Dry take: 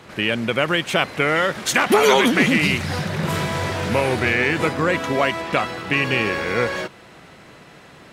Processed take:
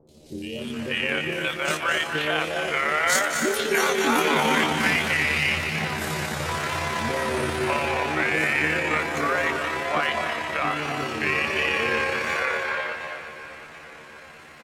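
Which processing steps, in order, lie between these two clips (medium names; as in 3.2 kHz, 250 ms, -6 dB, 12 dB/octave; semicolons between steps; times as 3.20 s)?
peaking EQ 140 Hz -9 dB 2.5 oct; peak limiter -9.5 dBFS, peak gain reduction 5.5 dB; three bands offset in time lows, highs, mids 50/320 ms, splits 510/3800 Hz; wow and flutter 70 cents; on a send at -4 dB: reverberation RT60 0.65 s, pre-delay 107 ms; on the sum: granular stretch 1.8×, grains 59 ms; feedback delay 725 ms, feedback 51%, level -16 dB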